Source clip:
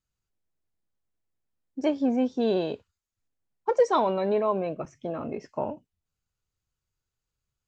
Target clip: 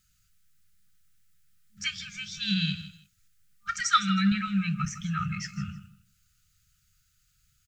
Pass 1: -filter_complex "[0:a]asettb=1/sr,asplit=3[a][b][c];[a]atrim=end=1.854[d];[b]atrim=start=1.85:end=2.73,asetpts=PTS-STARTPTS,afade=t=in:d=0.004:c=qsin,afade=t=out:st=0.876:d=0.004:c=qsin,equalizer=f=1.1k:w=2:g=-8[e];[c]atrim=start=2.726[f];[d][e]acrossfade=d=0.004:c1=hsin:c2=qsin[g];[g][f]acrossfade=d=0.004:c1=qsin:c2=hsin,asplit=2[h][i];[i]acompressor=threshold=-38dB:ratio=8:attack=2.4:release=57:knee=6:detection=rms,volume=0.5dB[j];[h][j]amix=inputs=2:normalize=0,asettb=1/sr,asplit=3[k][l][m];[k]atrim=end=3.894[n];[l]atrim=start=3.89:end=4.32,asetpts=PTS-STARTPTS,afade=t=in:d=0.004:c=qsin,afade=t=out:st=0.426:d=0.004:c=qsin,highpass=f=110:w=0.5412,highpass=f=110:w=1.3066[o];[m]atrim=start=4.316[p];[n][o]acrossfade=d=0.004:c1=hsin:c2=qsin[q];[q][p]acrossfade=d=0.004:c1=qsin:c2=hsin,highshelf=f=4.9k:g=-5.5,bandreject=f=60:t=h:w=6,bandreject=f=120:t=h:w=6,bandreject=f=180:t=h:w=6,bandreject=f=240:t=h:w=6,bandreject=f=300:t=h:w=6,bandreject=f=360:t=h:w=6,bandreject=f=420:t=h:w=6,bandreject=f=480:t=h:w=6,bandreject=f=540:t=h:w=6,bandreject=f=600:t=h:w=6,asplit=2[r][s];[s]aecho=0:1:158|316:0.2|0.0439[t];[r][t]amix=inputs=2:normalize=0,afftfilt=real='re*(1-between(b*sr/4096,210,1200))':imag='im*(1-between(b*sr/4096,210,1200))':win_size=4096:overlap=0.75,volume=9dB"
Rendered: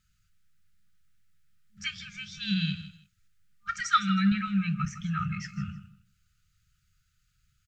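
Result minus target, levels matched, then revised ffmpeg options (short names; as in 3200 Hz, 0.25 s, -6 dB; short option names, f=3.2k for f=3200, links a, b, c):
8000 Hz band -6.0 dB
-filter_complex "[0:a]asettb=1/sr,asplit=3[a][b][c];[a]atrim=end=1.854[d];[b]atrim=start=1.85:end=2.73,asetpts=PTS-STARTPTS,afade=t=in:d=0.004:c=qsin,afade=t=out:st=0.876:d=0.004:c=qsin,equalizer=f=1.1k:w=2:g=-8[e];[c]atrim=start=2.726[f];[d][e]acrossfade=d=0.004:c1=hsin:c2=qsin[g];[g][f]acrossfade=d=0.004:c1=qsin:c2=hsin,asplit=2[h][i];[i]acompressor=threshold=-38dB:ratio=8:attack=2.4:release=57:knee=6:detection=rms,volume=0.5dB[j];[h][j]amix=inputs=2:normalize=0,asettb=1/sr,asplit=3[k][l][m];[k]atrim=end=3.894[n];[l]atrim=start=3.89:end=4.32,asetpts=PTS-STARTPTS,afade=t=in:d=0.004:c=qsin,afade=t=out:st=0.426:d=0.004:c=qsin,highpass=f=110:w=0.5412,highpass=f=110:w=1.3066[o];[m]atrim=start=4.316[p];[n][o]acrossfade=d=0.004:c1=hsin:c2=qsin[q];[q][p]acrossfade=d=0.004:c1=qsin:c2=hsin,highshelf=f=4.9k:g=6,bandreject=f=60:t=h:w=6,bandreject=f=120:t=h:w=6,bandreject=f=180:t=h:w=6,bandreject=f=240:t=h:w=6,bandreject=f=300:t=h:w=6,bandreject=f=360:t=h:w=6,bandreject=f=420:t=h:w=6,bandreject=f=480:t=h:w=6,bandreject=f=540:t=h:w=6,bandreject=f=600:t=h:w=6,asplit=2[r][s];[s]aecho=0:1:158|316:0.2|0.0439[t];[r][t]amix=inputs=2:normalize=0,afftfilt=real='re*(1-between(b*sr/4096,210,1200))':imag='im*(1-between(b*sr/4096,210,1200))':win_size=4096:overlap=0.75,volume=9dB"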